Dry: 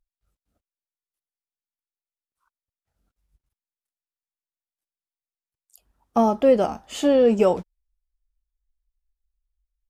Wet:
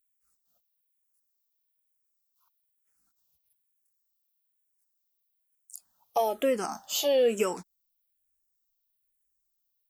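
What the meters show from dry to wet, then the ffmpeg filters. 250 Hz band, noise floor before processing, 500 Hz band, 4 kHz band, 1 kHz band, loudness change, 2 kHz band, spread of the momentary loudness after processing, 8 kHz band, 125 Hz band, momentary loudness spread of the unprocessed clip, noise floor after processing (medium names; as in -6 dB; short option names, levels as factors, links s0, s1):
-14.0 dB, under -85 dBFS, -7.5 dB, +2.5 dB, -7.0 dB, -7.5 dB, -2.0 dB, 8 LU, +5.0 dB, under -10 dB, 9 LU, -78 dBFS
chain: -filter_complex "[0:a]aemphasis=mode=production:type=riaa,acompressor=threshold=0.0631:ratio=1.5,asplit=2[s0][s1];[s1]afreqshift=-1.1[s2];[s0][s2]amix=inputs=2:normalize=1"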